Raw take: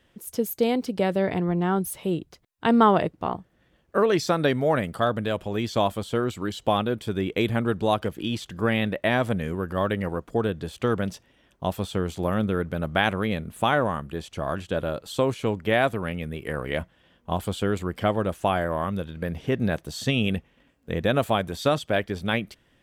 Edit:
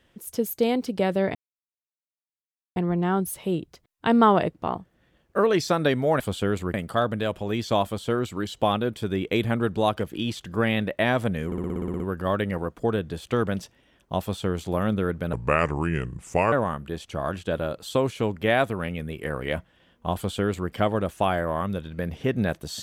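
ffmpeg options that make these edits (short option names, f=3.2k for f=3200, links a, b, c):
-filter_complex "[0:a]asplit=15[a][b][c][d][e][f][g][h][i][j][k][l][m][n][o];[a]atrim=end=1.35,asetpts=PTS-STARTPTS,afade=t=out:st=1.346:d=0.004:c=hsin,apad=pad_dur=1.41[p];[b]atrim=start=1.35:end=4.792,asetpts=PTS-STARTPTS,afade=t=in:d=0.004:c=hsin[q];[c]atrim=start=17.398:end=17.942[r];[d]atrim=start=4.788:end=9.572[s];[e]atrim=start=9.508:end=9.572[t];[f]atrim=start=9.508:end=9.572[u];[g]atrim=start=9.508:end=9.572[v];[h]atrim=start=9.508:end=9.572[w];[i]atrim=start=9.508:end=9.572[x];[j]atrim=start=9.508:end=9.572[y];[k]atrim=start=9.508:end=9.572[z];[l]atrim=start=9.508:end=9.572[aa];[m]atrim=start=9.508:end=12.844[ab];[n]atrim=start=12.84:end=13.76,asetpts=PTS-STARTPTS,asetrate=33957,aresample=44100[ac];[o]atrim=start=13.756[ad];[p][q]concat=n=2:v=0:a=1[ae];[ae][r]acrossfade=d=0.004:c1=hsin:c2=hsin[af];[af][s]acrossfade=d=0.004:c1=hsin:c2=hsin[ag];[ag][t]acrossfade=d=0.004:c1=hsin:c2=hsin[ah];[ah][u]acrossfade=d=0.004:c1=hsin:c2=hsin[ai];[ai][v]acrossfade=d=0.004:c1=hsin:c2=hsin[aj];[aj][w]acrossfade=d=0.004:c1=hsin:c2=hsin[ak];[ak][x]acrossfade=d=0.004:c1=hsin:c2=hsin[al];[al][y]acrossfade=d=0.004:c1=hsin:c2=hsin[am];[am][z]acrossfade=d=0.004:c1=hsin:c2=hsin[an];[an][aa]acrossfade=d=0.004:c1=hsin:c2=hsin[ao];[ao][ab]acrossfade=d=0.004:c1=hsin:c2=hsin[ap];[ap][ac]acrossfade=d=0.004:c1=hsin:c2=hsin[aq];[aq][ad]acrossfade=d=0.004:c1=hsin:c2=hsin"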